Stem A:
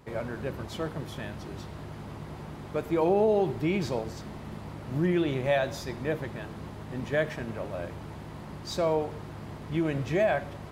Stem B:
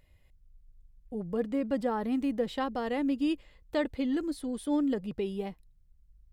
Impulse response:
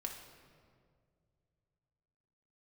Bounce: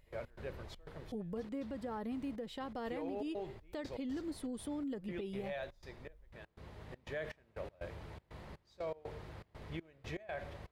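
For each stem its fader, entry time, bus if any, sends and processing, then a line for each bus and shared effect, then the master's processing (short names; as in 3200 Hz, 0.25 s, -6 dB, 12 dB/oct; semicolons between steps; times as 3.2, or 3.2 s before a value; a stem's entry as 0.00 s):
-12.0 dB, 0.00 s, no send, graphic EQ 125/250/500/2000/4000 Hz -7/-6/+6/+6/+5 dB; step gate ".x.xxx.xx." 121 bpm -24 dB; low shelf 170 Hz +12 dB; auto duck -7 dB, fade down 1.75 s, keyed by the second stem
-2.5 dB, 0.00 s, no send, compressor 6:1, threshold -35 dBFS, peak gain reduction 11 dB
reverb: off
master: limiter -32.5 dBFS, peak gain reduction 9.5 dB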